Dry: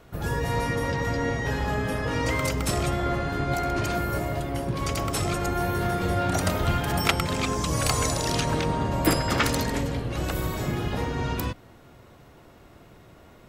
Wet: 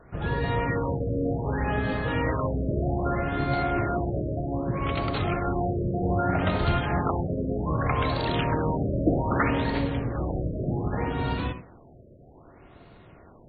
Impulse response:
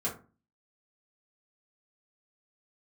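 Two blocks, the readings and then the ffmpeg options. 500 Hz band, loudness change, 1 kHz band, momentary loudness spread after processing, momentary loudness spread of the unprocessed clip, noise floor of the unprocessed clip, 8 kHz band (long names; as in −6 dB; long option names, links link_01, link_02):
+0.5 dB, −1.0 dB, −1.0 dB, 5 LU, 5 LU, −51 dBFS, below −40 dB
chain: -filter_complex "[0:a]asplit=2[link_01][link_02];[1:a]atrim=start_sample=2205,asetrate=70560,aresample=44100,adelay=61[link_03];[link_02][link_03]afir=irnorm=-1:irlink=0,volume=-12.5dB[link_04];[link_01][link_04]amix=inputs=2:normalize=0,afftfilt=real='re*lt(b*sr/1024,650*pow(4700/650,0.5+0.5*sin(2*PI*0.64*pts/sr)))':imag='im*lt(b*sr/1024,650*pow(4700/650,0.5+0.5*sin(2*PI*0.64*pts/sr)))':win_size=1024:overlap=0.75"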